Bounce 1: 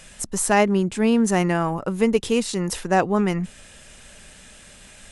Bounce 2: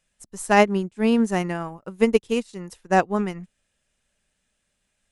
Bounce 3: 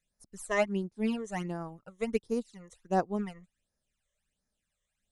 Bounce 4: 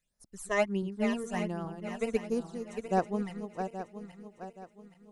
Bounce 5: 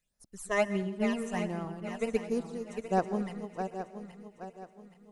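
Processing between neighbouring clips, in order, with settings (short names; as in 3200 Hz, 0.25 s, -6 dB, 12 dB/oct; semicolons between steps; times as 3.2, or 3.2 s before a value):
upward expander 2.5:1, over -35 dBFS; gain +3 dB
phaser stages 12, 1.4 Hz, lowest notch 250–3000 Hz; gain -8.5 dB
regenerating reverse delay 0.412 s, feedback 61%, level -8 dB
plate-style reverb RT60 0.76 s, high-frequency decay 0.95×, pre-delay 0.11 s, DRR 14 dB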